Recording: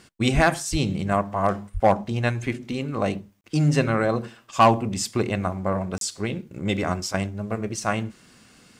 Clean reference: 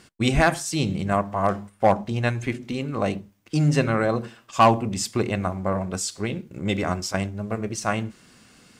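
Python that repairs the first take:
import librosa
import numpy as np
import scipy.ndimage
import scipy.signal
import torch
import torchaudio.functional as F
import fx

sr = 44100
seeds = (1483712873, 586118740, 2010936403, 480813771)

y = fx.highpass(x, sr, hz=140.0, slope=24, at=(0.71, 0.83), fade=0.02)
y = fx.highpass(y, sr, hz=140.0, slope=24, at=(1.73, 1.85), fade=0.02)
y = fx.fix_interpolate(y, sr, at_s=(3.41, 5.98), length_ms=32.0)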